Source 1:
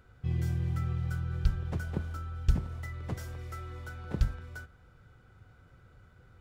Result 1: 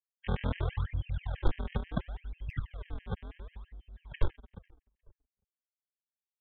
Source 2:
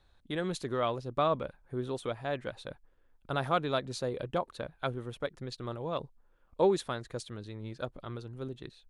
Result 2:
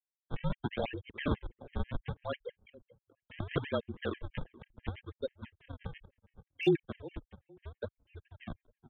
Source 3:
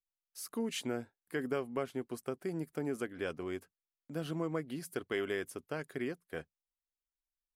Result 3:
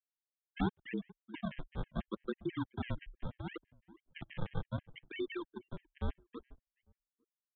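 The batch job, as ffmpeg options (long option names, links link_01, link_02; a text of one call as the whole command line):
ffmpeg -i in.wav -filter_complex "[0:a]afftfilt=real='re*gte(hypot(re,im),0.0794)':imag='im*gte(hypot(re,im),0.0794)':win_size=1024:overlap=0.75,afftdn=noise_reduction=26:noise_floor=-53,equalizer=frequency=250:width_type=o:width=1:gain=5,equalizer=frequency=1000:width_type=o:width=1:gain=-5,equalizer=frequency=2000:width_type=o:width=1:gain=-4,aresample=16000,acrusher=samples=26:mix=1:aa=0.000001:lfo=1:lforange=41.6:lforate=0.71,aresample=44100,aeval=exprs='sgn(val(0))*max(abs(val(0))-0.00112,0)':channel_layout=same,aresample=8000,aresample=44100,afreqshift=-33,volume=16dB,asoftclip=hard,volume=-16dB,asplit=2[link_01][link_02];[link_02]adelay=427,lowpass=frequency=950:poles=1,volume=-18dB,asplit=2[link_03][link_04];[link_04]adelay=427,lowpass=frequency=950:poles=1,volume=0.2[link_05];[link_03][link_05]amix=inputs=2:normalize=0[link_06];[link_01][link_06]amix=inputs=2:normalize=0,afftfilt=real='re*gt(sin(2*PI*6.1*pts/sr)*(1-2*mod(floor(b*sr/1024/1600),2)),0)':imag='im*gt(sin(2*PI*6.1*pts/sr)*(1-2*mod(floor(b*sr/1024/1600),2)),0)':win_size=1024:overlap=0.75,volume=1dB" out.wav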